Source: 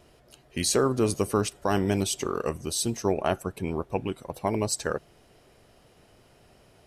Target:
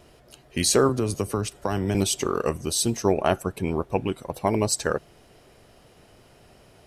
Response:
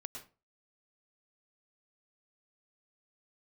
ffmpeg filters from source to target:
-filter_complex "[0:a]asettb=1/sr,asplit=3[link_01][link_02][link_03];[link_01]atrim=end=0.894[link_04];[link_02]atrim=start=0.89:end=1.95,asetpts=PTS-STARTPTS,afade=type=in:duration=0.004:curve=qsin,afade=type=out:start_time=1.056:duration=0.004:curve=qsin,acrossover=split=130[link_05][link_06];[link_06]acompressor=threshold=-27dB:ratio=6[link_07];[link_05][link_07]amix=inputs=2:normalize=0[link_08];[link_03]atrim=start=1.946[link_09];[link_04][link_08]acrossfade=duration=0.004:curve1=hsin:curve2=qsin[link_10];[link_10][link_09]acrossfade=duration=0.004:curve1=qsin:curve2=hsin,volume=4dB"

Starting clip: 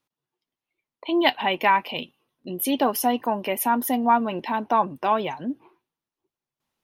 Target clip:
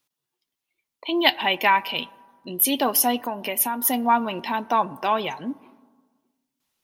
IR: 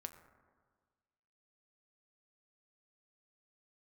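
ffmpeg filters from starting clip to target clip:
-filter_complex "[0:a]asplit=2[link_01][link_02];[1:a]atrim=start_sample=2205[link_03];[link_02][link_03]afir=irnorm=-1:irlink=0,volume=-4dB[link_04];[link_01][link_04]amix=inputs=2:normalize=0,asettb=1/sr,asplit=3[link_05][link_06][link_07];[link_05]atrim=end=3.164[link_08];[link_06]atrim=start=3.16:end=3.85,asetpts=PTS-STARTPTS,afade=type=in:duration=0.004:curve=qsin,afade=type=out:start_time=0.686:duration=0.004:curve=qsin,acompressor=threshold=-22dB:ratio=3[link_09];[link_07]atrim=start=3.846[link_10];[link_08][link_09]acrossfade=duration=0.004:curve1=hsin:curve2=qsin[link_11];[link_11][link_10]acrossfade=duration=0.004:curve1=qsin:curve2=hsin,highshelf=frequency=2400:gain=11,volume=-4.5dB"

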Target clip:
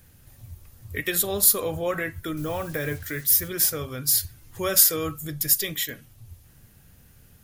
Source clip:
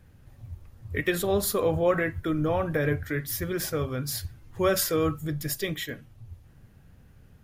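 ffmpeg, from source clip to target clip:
ffmpeg -i in.wav -filter_complex "[0:a]asplit=2[link_01][link_02];[link_02]acompressor=threshold=-37dB:ratio=6,volume=-3dB[link_03];[link_01][link_03]amix=inputs=2:normalize=0,asettb=1/sr,asplit=3[link_04][link_05][link_06];[link_04]atrim=end=2.374[link_07];[link_05]atrim=start=2.37:end=3.48,asetpts=PTS-STARTPTS,afade=type=in:duration=0.004:curve=qsin,afade=type=out:start_time=1.106:duration=0.004:curve=qsin,acrusher=bits=7:mix=0:aa=0.5[link_08];[link_06]atrim=start=3.476[link_09];[link_07][link_08]acrossfade=duration=0.004:curve1=hsin:curve2=qsin[link_10];[link_10][link_09]acrossfade=duration=0.004:curve1=qsin:curve2=hsin,crystalizer=i=4.5:c=0,volume=-5.5dB" out.wav

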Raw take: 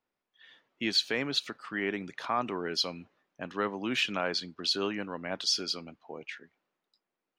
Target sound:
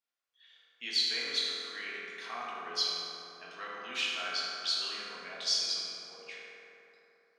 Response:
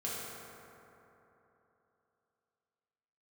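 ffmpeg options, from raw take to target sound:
-filter_complex "[0:a]bandpass=frequency=5300:width_type=q:width=0.65:csg=0[link_01];[1:a]atrim=start_sample=2205[link_02];[link_01][link_02]afir=irnorm=-1:irlink=0"

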